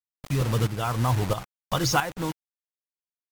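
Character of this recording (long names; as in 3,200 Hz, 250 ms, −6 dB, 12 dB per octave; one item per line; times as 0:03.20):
a quantiser's noise floor 6 bits, dither none
tremolo saw up 1.5 Hz, depth 70%
MP3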